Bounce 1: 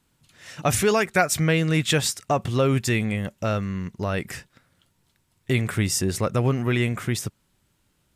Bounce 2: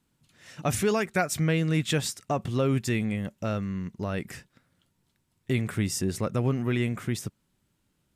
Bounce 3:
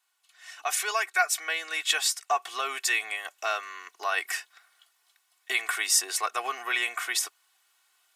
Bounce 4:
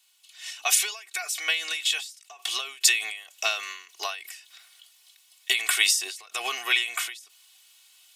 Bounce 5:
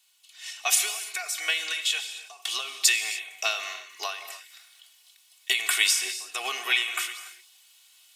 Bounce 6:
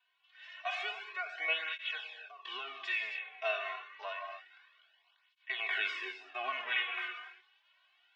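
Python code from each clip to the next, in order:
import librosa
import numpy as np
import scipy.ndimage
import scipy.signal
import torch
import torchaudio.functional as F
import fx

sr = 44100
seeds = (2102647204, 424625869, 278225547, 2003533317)

y1 = fx.peak_eq(x, sr, hz=220.0, db=5.0, octaves=1.7)
y1 = y1 * librosa.db_to_amplitude(-7.0)
y2 = scipy.signal.sosfilt(scipy.signal.butter(4, 810.0, 'highpass', fs=sr, output='sos'), y1)
y2 = y2 + 0.89 * np.pad(y2, (int(2.7 * sr / 1000.0), 0))[:len(y2)]
y2 = fx.rider(y2, sr, range_db=4, speed_s=2.0)
y2 = y2 * librosa.db_to_amplitude(5.0)
y3 = fx.high_shelf_res(y2, sr, hz=2100.0, db=10.0, q=1.5)
y3 = fx.end_taper(y3, sr, db_per_s=100.0)
y3 = y3 * librosa.db_to_amplitude(1.5)
y4 = fx.rev_gated(y3, sr, seeds[0], gate_ms=320, shape='flat', drr_db=9.0)
y4 = y4 * librosa.db_to_amplitude(-1.0)
y5 = fx.cabinet(y4, sr, low_hz=230.0, low_slope=12, high_hz=2900.0, hz=(590.0, 1000.0, 1600.0), db=(8, 7, 8))
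y5 = fx.hpss(y5, sr, part='percussive', gain_db=-15)
y5 = fx.flanger_cancel(y5, sr, hz=0.28, depth_ms=3.7)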